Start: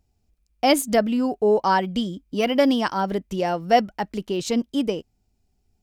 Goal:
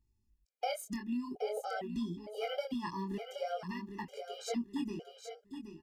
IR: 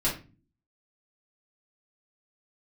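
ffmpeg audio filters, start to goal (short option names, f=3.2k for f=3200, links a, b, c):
-filter_complex "[0:a]flanger=delay=18:depth=7.8:speed=0.48,acompressor=threshold=-26dB:ratio=6,asplit=2[a][b];[b]aecho=0:1:773|1546|2319:0.376|0.109|0.0316[c];[a][c]amix=inputs=2:normalize=0,afftfilt=real='re*gt(sin(2*PI*1.1*pts/sr)*(1-2*mod(floor(b*sr/1024/410),2)),0)':imag='im*gt(sin(2*PI*1.1*pts/sr)*(1-2*mod(floor(b*sr/1024/410),2)),0)':win_size=1024:overlap=0.75,volume=-5.5dB"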